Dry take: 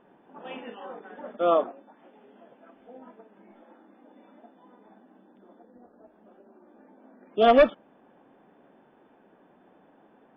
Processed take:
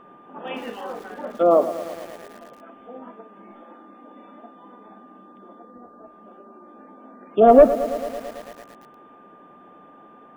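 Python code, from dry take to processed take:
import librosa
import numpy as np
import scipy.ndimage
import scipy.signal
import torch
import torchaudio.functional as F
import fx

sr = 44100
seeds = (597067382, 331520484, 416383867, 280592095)

y = fx.env_lowpass_down(x, sr, base_hz=800.0, full_db=-23.0)
y = y + 10.0 ** (-56.0 / 20.0) * np.sin(2.0 * np.pi * 1200.0 * np.arange(len(y)) / sr)
y = fx.echo_crushed(y, sr, ms=111, feedback_pct=80, bits=7, wet_db=-13.5)
y = F.gain(torch.from_numpy(y), 7.5).numpy()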